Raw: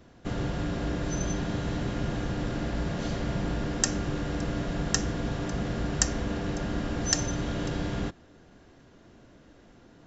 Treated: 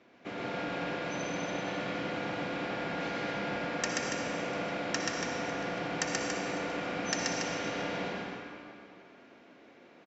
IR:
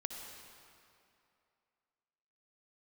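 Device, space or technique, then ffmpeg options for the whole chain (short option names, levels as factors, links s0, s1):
station announcement: -filter_complex "[0:a]highpass=300,lowpass=4300,equalizer=f=2300:t=o:w=0.27:g=10.5,aecho=1:1:131.2|282.8:0.794|0.447[s0];[1:a]atrim=start_sample=2205[s1];[s0][s1]afir=irnorm=-1:irlink=0,volume=0.891"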